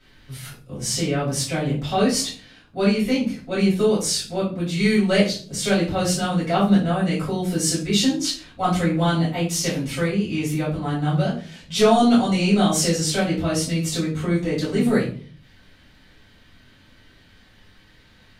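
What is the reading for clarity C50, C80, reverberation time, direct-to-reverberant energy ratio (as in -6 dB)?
6.5 dB, 12.0 dB, 0.45 s, -9.0 dB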